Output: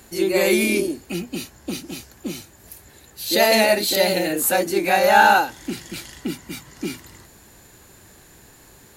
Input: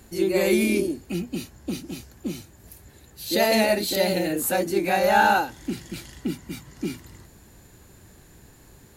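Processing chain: low shelf 320 Hz -9 dB; gain +6 dB

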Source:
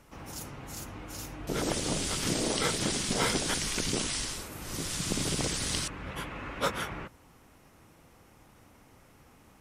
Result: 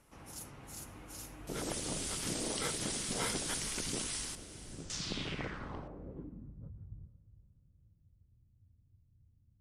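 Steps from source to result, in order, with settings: 4.35–4.9 median filter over 41 samples; diffused feedback echo 0.455 s, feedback 47%, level -15 dB; low-pass sweep 11000 Hz -> 100 Hz, 4.69–6.71; gain -8.5 dB

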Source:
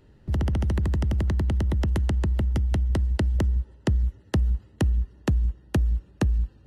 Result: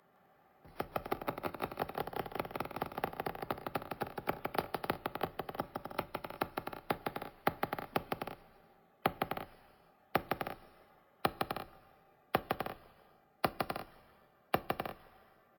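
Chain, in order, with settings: HPF 1200 Hz 12 dB/oct; high shelf 4700 Hz -7 dB; speed mistake 78 rpm record played at 33 rpm; bouncing-ball echo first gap 0.16 s, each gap 0.6×, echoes 5; on a send at -16.5 dB: reverb RT60 0.50 s, pre-delay 5 ms; on the sum: sample-and-hold 3×; gain +4.5 dB

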